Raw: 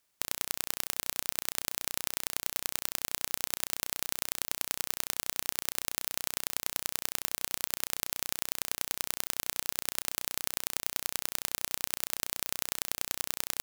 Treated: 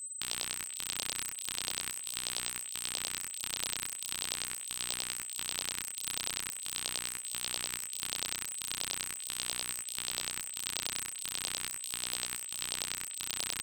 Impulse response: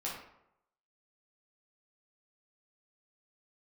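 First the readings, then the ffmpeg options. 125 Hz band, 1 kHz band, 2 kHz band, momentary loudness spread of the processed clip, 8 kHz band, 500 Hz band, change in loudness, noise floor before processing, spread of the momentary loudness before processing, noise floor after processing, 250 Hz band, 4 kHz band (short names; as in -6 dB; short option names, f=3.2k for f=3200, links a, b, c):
-2.0 dB, -4.0 dB, -1.0 dB, 2 LU, +0.5 dB, -5.5 dB, -2.5 dB, -76 dBFS, 1 LU, -43 dBFS, -3.0 dB, +1.5 dB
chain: -filter_complex "[0:a]highshelf=f=2.7k:t=q:w=1.5:g=7.5,aeval=exprs='val(0)*sin(2*PI*400*n/s)':c=same,aeval=exprs='val(0)+0.0141*sin(2*PI*8100*n/s)':c=same,acrossover=split=700|2800[a][b][c];[c]aeval=exprs='0.299*(abs(mod(val(0)/0.299+3,4)-2)-1)':c=same[d];[a][b][d]amix=inputs=3:normalize=0,flanger=delay=17:depth=6.6:speed=0.41"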